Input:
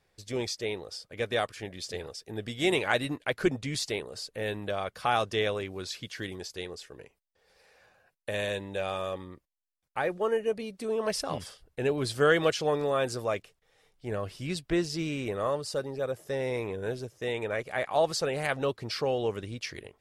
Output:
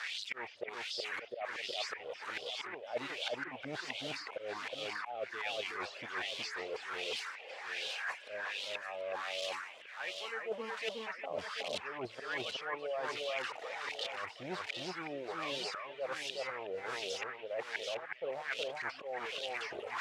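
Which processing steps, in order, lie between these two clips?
zero-crossing glitches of -16 dBFS; distance through air 110 m; de-esser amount 80%; in parallel at -11 dB: bit crusher 5-bit; on the sum: slow attack 418 ms; wah-wah 1.3 Hz 570–3300 Hz, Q 3.1; reverse; compression 6:1, threshold -52 dBFS, peak gain reduction 23.5 dB; reverse; reverb removal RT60 0.79 s; echo whose repeats swap between lows and highs 367 ms, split 2.1 kHz, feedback 59%, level -2 dB; trim +14.5 dB

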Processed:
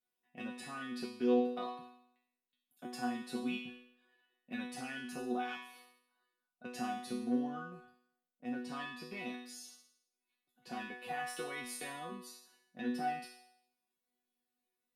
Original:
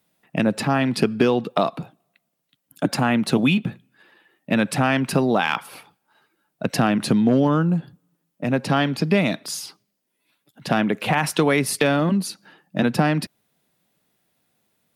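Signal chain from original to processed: chord resonator B3 fifth, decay 0.7 s; trim +1.5 dB

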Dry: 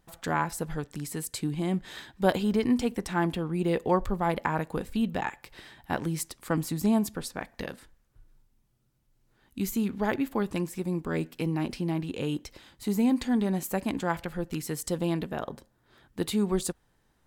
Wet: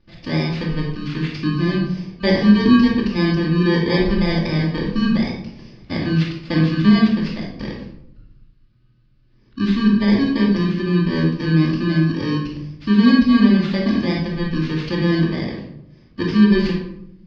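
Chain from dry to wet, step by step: bit-reversed sample order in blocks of 32 samples; elliptic low-pass 4.7 kHz, stop band 60 dB; peaking EQ 800 Hz -8 dB 0.97 oct; reverberation RT60 0.75 s, pre-delay 3 ms, DRR -11 dB

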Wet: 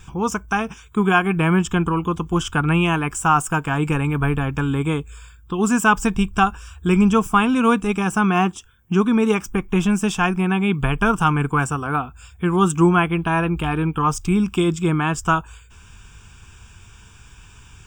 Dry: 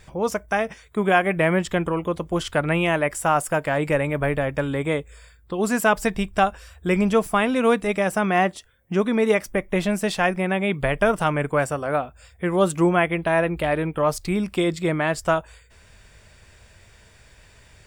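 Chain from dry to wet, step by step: static phaser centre 2.9 kHz, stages 8; dynamic bell 3.6 kHz, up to -4 dB, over -43 dBFS, Q 0.79; trim +7.5 dB

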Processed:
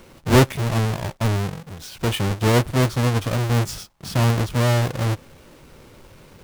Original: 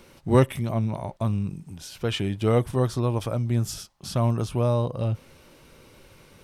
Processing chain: square wave that keeps the level; loudspeaker Doppler distortion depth 0.21 ms

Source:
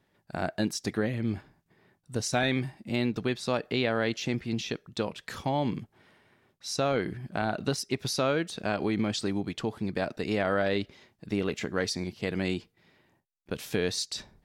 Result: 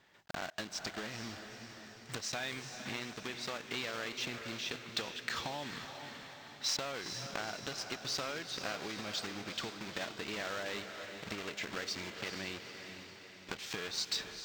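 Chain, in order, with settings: block-companded coder 3-bit; boxcar filter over 4 samples; compression 16:1, threshold -40 dBFS, peak gain reduction 18.5 dB; tilt shelf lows -7 dB, about 660 Hz; echo that smears into a reverb 451 ms, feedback 56%, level -8 dB; trim +3 dB

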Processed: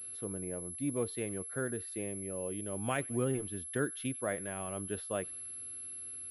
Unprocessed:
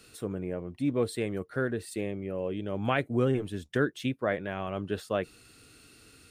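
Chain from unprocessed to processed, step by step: feedback echo behind a high-pass 94 ms, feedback 55%, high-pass 1.6 kHz, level -21.5 dB; class-D stage that switches slowly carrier 11 kHz; trim -6.5 dB

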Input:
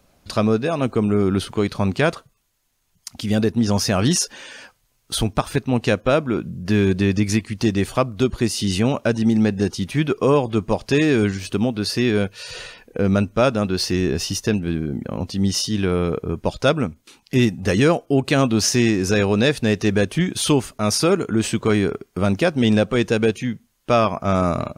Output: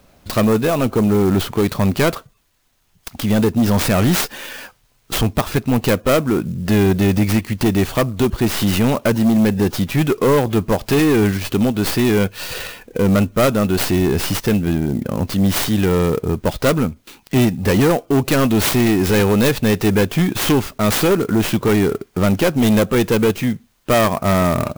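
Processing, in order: tracing distortion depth 0.42 ms; saturation -16.5 dBFS, distortion -11 dB; sampling jitter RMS 0.029 ms; trim +7 dB

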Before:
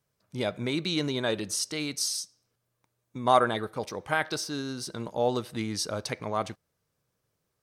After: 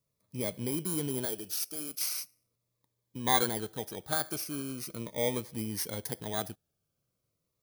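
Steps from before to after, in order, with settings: bit-reversed sample order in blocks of 16 samples; 1.25–2.01 s: ten-band graphic EQ 125 Hz -12 dB, 250 Hz -6 dB, 1 kHz -5 dB, 2 kHz -4 dB; Shepard-style phaser falling 0.4 Hz; trim -3 dB

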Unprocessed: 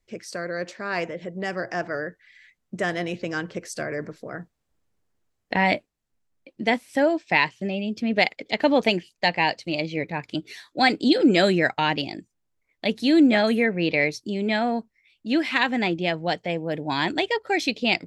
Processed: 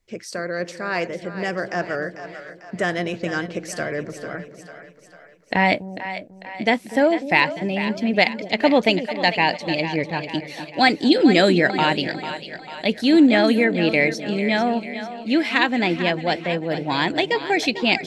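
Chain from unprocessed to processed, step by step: two-band feedback delay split 520 Hz, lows 248 ms, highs 446 ms, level -11 dB; trim +3 dB

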